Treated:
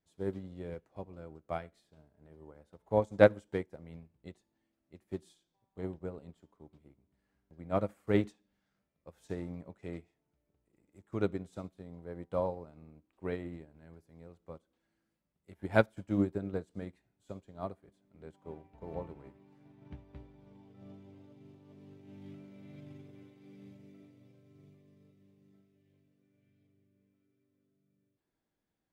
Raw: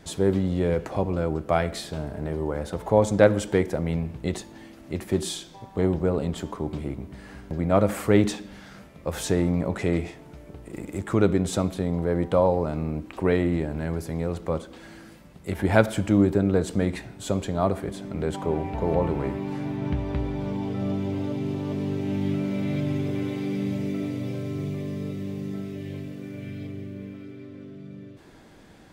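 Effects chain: upward expander 2.5:1, over -34 dBFS; gain -3 dB

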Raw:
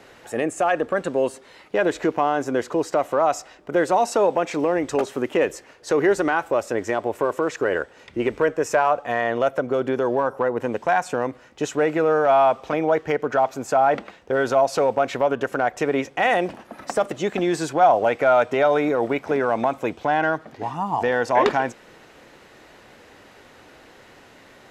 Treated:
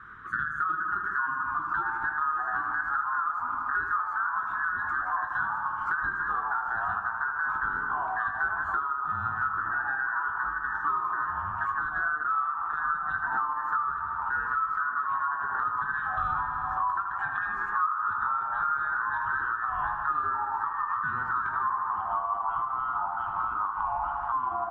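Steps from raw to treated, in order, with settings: band inversion scrambler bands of 2000 Hz; EQ curve 100 Hz 0 dB, 380 Hz -7 dB, 620 Hz -28 dB, 1200 Hz +8 dB, 3000 Hz -17 dB, 4900 Hz -26 dB; echoes that change speed 0.449 s, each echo -3 st, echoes 3, each echo -6 dB; on a send: dark delay 78 ms, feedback 70%, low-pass 2900 Hz, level -7 dB; on the sum: compressor 10:1, threshold -27 dBFS, peak gain reduction 23 dB; high shelf 7500 Hz -6 dB; doubler 20 ms -7 dB

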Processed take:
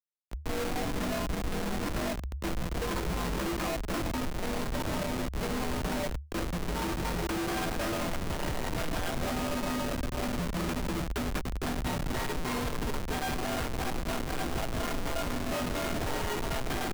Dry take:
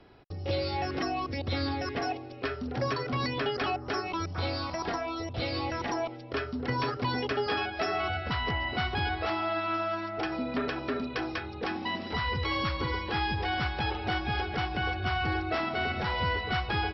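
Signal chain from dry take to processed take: HPF 43 Hz 12 dB/oct; split-band echo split 570 Hz, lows 0.449 s, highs 0.1 s, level -10 dB; Schmitt trigger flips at -30.5 dBFS; frequency shift -76 Hz

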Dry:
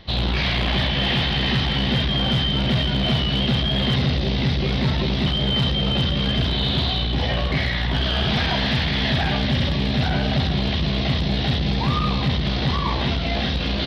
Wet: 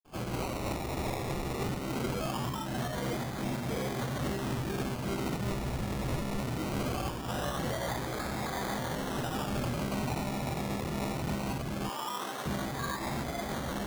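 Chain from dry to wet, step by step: reverb RT60 0.45 s, pre-delay 46 ms; limiter -22.5 dBFS, peak gain reduction 10 dB; 2.3–2.78 LPF 3500 Hz 6 dB/oct; decimation with a swept rate 22×, swing 60% 0.21 Hz; 11.89–12.46 HPF 400 Hz 12 dB/oct; noise-modulated level, depth 55%

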